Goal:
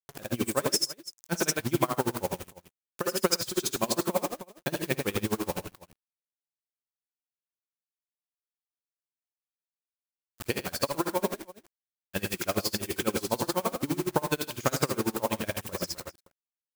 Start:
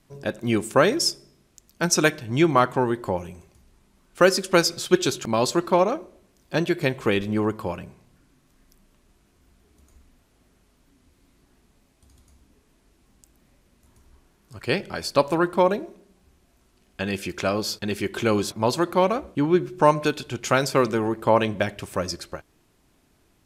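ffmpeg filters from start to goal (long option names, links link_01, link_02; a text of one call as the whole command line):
ffmpeg -i in.wav -af "acompressor=threshold=-20dB:ratio=6,atempo=1.4,acrusher=bits=5:mix=0:aa=0.000001,aecho=1:1:50|58|108|130|315:0.126|0.473|0.531|0.158|0.141,crystalizer=i=1:c=0,aeval=exprs='val(0)*pow(10,-25*(0.5-0.5*cos(2*PI*12*n/s))/20)':channel_layout=same" out.wav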